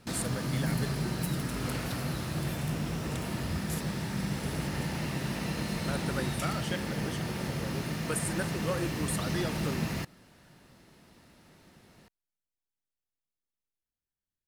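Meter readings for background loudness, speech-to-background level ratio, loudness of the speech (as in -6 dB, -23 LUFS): -33.5 LUFS, -5.0 dB, -38.5 LUFS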